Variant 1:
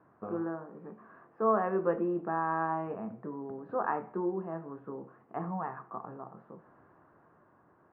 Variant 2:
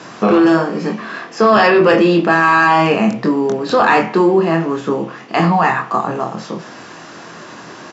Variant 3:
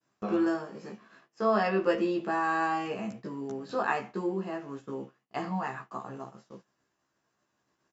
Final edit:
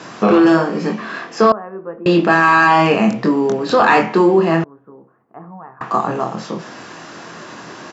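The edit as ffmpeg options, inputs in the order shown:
-filter_complex "[0:a]asplit=2[a][b];[1:a]asplit=3[c][d][e];[c]atrim=end=1.522[f];[a]atrim=start=1.518:end=2.062[g];[d]atrim=start=2.058:end=4.642[h];[b]atrim=start=4.638:end=5.812[i];[e]atrim=start=5.808[j];[f][g]acrossfade=d=0.004:c1=hsin:c2=hsin[k];[k][h]acrossfade=d=0.004:c1=hsin:c2=hsin[l];[l][i]acrossfade=d=0.004:c1=hsin:c2=hsin[m];[m][j]acrossfade=d=0.004:c1=hsin:c2=hsin"

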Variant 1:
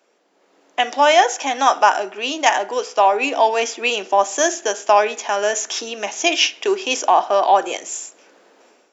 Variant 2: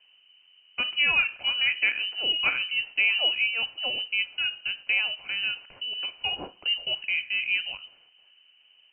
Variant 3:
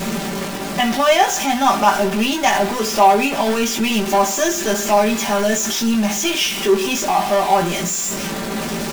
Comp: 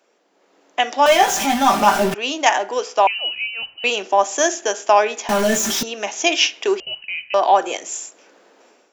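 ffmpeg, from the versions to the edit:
-filter_complex "[2:a]asplit=2[a][b];[1:a]asplit=2[c][d];[0:a]asplit=5[e][f][g][h][i];[e]atrim=end=1.062[j];[a]atrim=start=1.058:end=2.142[k];[f]atrim=start=2.138:end=3.072[l];[c]atrim=start=3.068:end=3.842[m];[g]atrim=start=3.838:end=5.292[n];[b]atrim=start=5.288:end=5.832[o];[h]atrim=start=5.828:end=6.802[p];[d]atrim=start=6.798:end=7.342[q];[i]atrim=start=7.338[r];[j][k]acrossfade=d=0.004:c1=hsin:c2=hsin[s];[s][l]acrossfade=d=0.004:c1=hsin:c2=hsin[t];[t][m]acrossfade=d=0.004:c1=hsin:c2=hsin[u];[u][n]acrossfade=d=0.004:c1=hsin:c2=hsin[v];[v][o]acrossfade=d=0.004:c1=hsin:c2=hsin[w];[w][p]acrossfade=d=0.004:c1=hsin:c2=hsin[x];[x][q]acrossfade=d=0.004:c1=hsin:c2=hsin[y];[y][r]acrossfade=d=0.004:c1=hsin:c2=hsin"

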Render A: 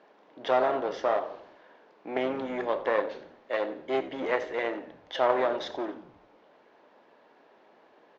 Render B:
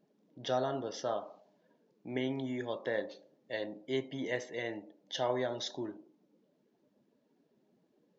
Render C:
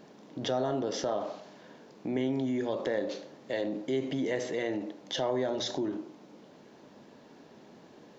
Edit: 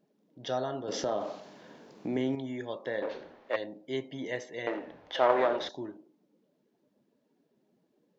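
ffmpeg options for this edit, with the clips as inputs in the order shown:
-filter_complex "[0:a]asplit=2[a][b];[1:a]asplit=4[c][d][e][f];[c]atrim=end=0.882[g];[2:a]atrim=start=0.878:end=2.352[h];[d]atrim=start=2.348:end=3.022[i];[a]atrim=start=3.018:end=3.562[j];[e]atrim=start=3.558:end=4.672[k];[b]atrim=start=4.668:end=5.692[l];[f]atrim=start=5.688[m];[g][h]acrossfade=d=0.004:c1=hsin:c2=hsin[n];[n][i]acrossfade=d=0.004:c1=hsin:c2=hsin[o];[o][j]acrossfade=d=0.004:c1=hsin:c2=hsin[p];[p][k]acrossfade=d=0.004:c1=hsin:c2=hsin[q];[q][l]acrossfade=d=0.004:c1=hsin:c2=hsin[r];[r][m]acrossfade=d=0.004:c1=hsin:c2=hsin"

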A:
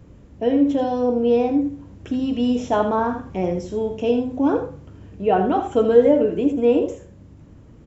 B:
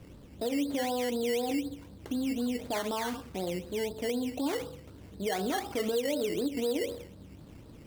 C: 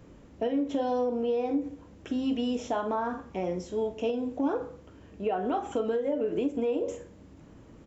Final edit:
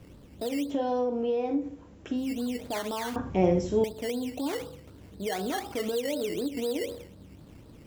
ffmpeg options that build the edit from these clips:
-filter_complex "[1:a]asplit=3[a][b][c];[a]atrim=end=0.76[d];[2:a]atrim=start=0.6:end=2.31[e];[b]atrim=start=2.15:end=3.162[f];[0:a]atrim=start=3.158:end=3.842[g];[c]atrim=start=3.838[h];[d][e]acrossfade=d=0.16:c1=tri:c2=tri[i];[i][f]acrossfade=d=0.16:c1=tri:c2=tri[j];[j][g]acrossfade=d=0.004:c1=hsin:c2=hsin[k];[k][h]acrossfade=d=0.004:c1=hsin:c2=hsin"

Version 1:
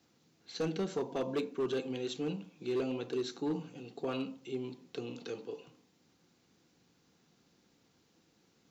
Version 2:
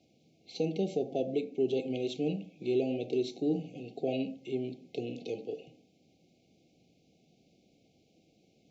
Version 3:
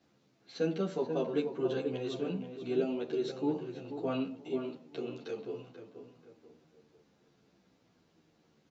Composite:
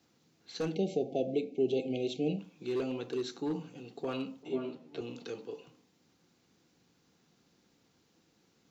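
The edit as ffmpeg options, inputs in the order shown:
-filter_complex "[0:a]asplit=3[a][b][c];[a]atrim=end=0.752[d];[1:a]atrim=start=0.748:end=2.392[e];[b]atrim=start=2.388:end=4.432[f];[2:a]atrim=start=4.428:end=5.012[g];[c]atrim=start=5.008[h];[d][e]acrossfade=d=0.004:c1=hsin:c2=hsin[i];[i][f]acrossfade=d=0.004:c1=hsin:c2=hsin[j];[j][g]acrossfade=d=0.004:c1=hsin:c2=hsin[k];[k][h]acrossfade=d=0.004:c1=hsin:c2=hsin"

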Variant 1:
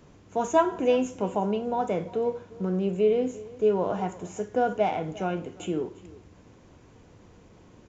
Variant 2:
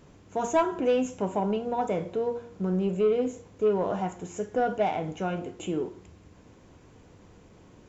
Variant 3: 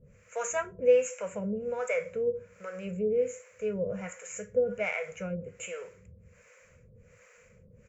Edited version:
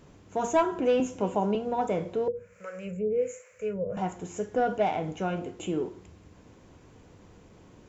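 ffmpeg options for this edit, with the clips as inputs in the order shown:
-filter_complex "[1:a]asplit=3[a][b][c];[a]atrim=end=1.002[d];[0:a]atrim=start=0.998:end=1.552[e];[b]atrim=start=1.548:end=2.282[f];[2:a]atrim=start=2.278:end=3.972[g];[c]atrim=start=3.968[h];[d][e]acrossfade=d=0.004:c1=hsin:c2=hsin[i];[i][f]acrossfade=d=0.004:c1=hsin:c2=hsin[j];[j][g]acrossfade=d=0.004:c1=hsin:c2=hsin[k];[k][h]acrossfade=d=0.004:c1=hsin:c2=hsin"

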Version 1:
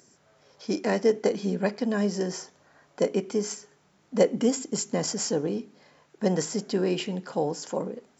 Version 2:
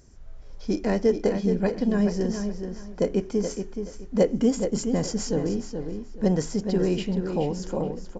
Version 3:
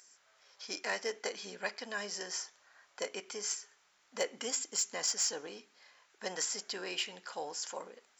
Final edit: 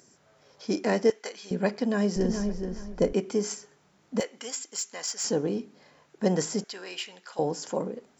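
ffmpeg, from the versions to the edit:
-filter_complex "[2:a]asplit=3[a][b][c];[0:a]asplit=5[d][e][f][g][h];[d]atrim=end=1.102[i];[a]atrim=start=1.098:end=1.512[j];[e]atrim=start=1.508:end=2.162[k];[1:a]atrim=start=2.158:end=3.132[l];[f]atrim=start=3.128:end=4.202[m];[b]atrim=start=4.198:end=5.242[n];[g]atrim=start=5.238:end=6.642[o];[c]atrim=start=6.638:end=7.392[p];[h]atrim=start=7.388[q];[i][j]acrossfade=d=0.004:c1=hsin:c2=hsin[r];[r][k]acrossfade=d=0.004:c1=hsin:c2=hsin[s];[s][l]acrossfade=d=0.004:c1=hsin:c2=hsin[t];[t][m]acrossfade=d=0.004:c1=hsin:c2=hsin[u];[u][n]acrossfade=d=0.004:c1=hsin:c2=hsin[v];[v][o]acrossfade=d=0.004:c1=hsin:c2=hsin[w];[w][p]acrossfade=d=0.004:c1=hsin:c2=hsin[x];[x][q]acrossfade=d=0.004:c1=hsin:c2=hsin"

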